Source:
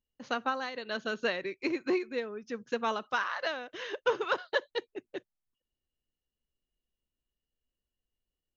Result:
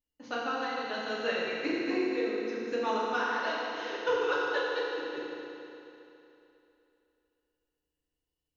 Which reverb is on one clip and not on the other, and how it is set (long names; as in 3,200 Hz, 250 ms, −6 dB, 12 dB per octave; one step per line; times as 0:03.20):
feedback delay network reverb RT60 3 s, high-frequency decay 0.95×, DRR −6.5 dB
level −6 dB